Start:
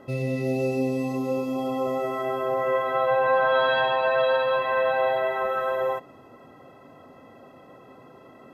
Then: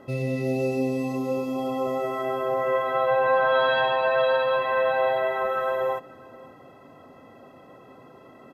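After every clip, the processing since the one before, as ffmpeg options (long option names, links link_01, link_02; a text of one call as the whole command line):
ffmpeg -i in.wav -af "aecho=1:1:545:0.0708" out.wav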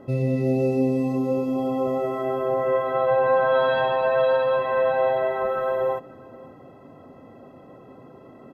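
ffmpeg -i in.wav -af "tiltshelf=frequency=870:gain=5.5" out.wav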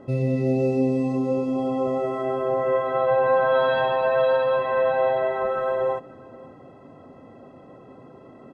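ffmpeg -i in.wav -af "aresample=22050,aresample=44100" out.wav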